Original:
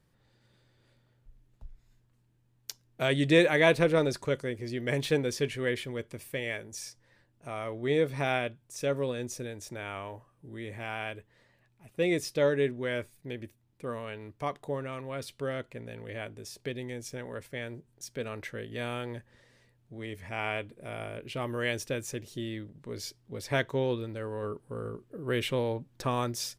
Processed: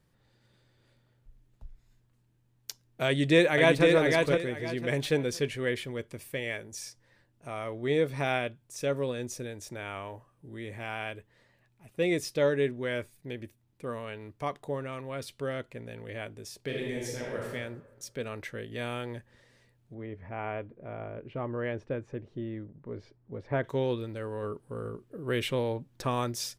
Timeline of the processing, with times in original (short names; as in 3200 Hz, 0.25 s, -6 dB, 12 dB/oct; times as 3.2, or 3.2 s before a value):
3.06–3.86 echo throw 0.51 s, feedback 25%, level -3.5 dB
16.64–17.5 reverb throw, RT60 1.2 s, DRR -3 dB
19.94–23.64 LPF 1300 Hz